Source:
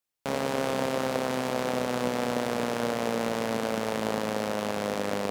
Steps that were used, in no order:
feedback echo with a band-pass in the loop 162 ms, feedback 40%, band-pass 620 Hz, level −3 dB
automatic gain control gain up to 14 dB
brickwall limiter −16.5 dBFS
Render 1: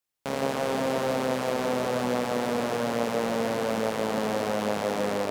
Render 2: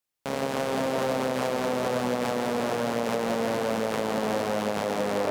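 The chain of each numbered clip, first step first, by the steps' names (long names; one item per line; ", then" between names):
automatic gain control, then brickwall limiter, then feedback echo with a band-pass in the loop
automatic gain control, then feedback echo with a band-pass in the loop, then brickwall limiter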